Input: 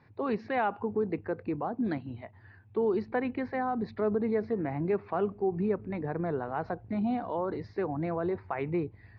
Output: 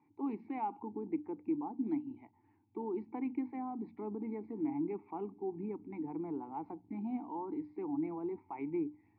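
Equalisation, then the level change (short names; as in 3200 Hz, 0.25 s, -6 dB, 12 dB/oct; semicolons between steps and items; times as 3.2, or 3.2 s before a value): vowel filter u; high shelf 2600 Hz -11.5 dB; notches 60/120/180/240/300 Hz; +4.5 dB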